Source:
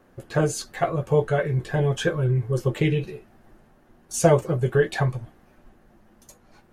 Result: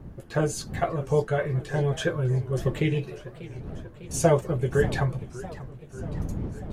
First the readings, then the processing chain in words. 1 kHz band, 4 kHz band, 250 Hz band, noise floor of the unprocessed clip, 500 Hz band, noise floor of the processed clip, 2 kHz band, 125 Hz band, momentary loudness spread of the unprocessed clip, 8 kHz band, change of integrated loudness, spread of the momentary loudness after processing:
-3.0 dB, -3.0 dB, -2.0 dB, -58 dBFS, -3.0 dB, -46 dBFS, -3.0 dB, -2.5 dB, 8 LU, -3.0 dB, -3.5 dB, 15 LU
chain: wind noise 160 Hz -34 dBFS; warbling echo 0.594 s, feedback 65%, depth 203 cents, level -17 dB; gain -3 dB

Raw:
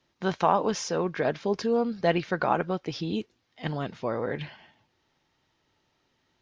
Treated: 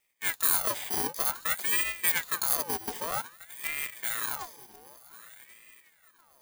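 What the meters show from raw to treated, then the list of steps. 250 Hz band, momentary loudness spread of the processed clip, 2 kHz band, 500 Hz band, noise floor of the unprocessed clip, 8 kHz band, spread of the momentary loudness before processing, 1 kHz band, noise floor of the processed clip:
-16.5 dB, 13 LU, +2.5 dB, -15.0 dB, -73 dBFS, +12.5 dB, 10 LU, -8.0 dB, -64 dBFS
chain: FFT order left unsorted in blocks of 64 samples; swung echo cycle 1.45 s, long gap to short 3:1, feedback 32%, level -19 dB; ring modulator with a swept carrier 1400 Hz, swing 60%, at 0.53 Hz

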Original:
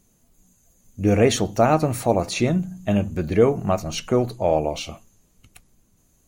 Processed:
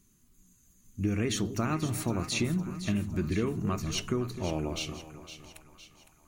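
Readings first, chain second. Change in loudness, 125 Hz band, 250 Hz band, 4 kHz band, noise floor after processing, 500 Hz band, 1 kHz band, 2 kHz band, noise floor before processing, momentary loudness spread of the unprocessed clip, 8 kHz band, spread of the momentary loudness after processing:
-10.0 dB, -7.0 dB, -8.0 dB, -5.0 dB, -64 dBFS, -15.5 dB, -14.5 dB, -7.0 dB, -62 dBFS, 7 LU, -5.5 dB, 16 LU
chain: band shelf 630 Hz -13 dB 1.1 oct; compressor, threshold -22 dBFS, peak gain reduction 8 dB; on a send: split-band echo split 850 Hz, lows 0.257 s, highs 0.51 s, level -11 dB; on the sum: gain -3.5 dB

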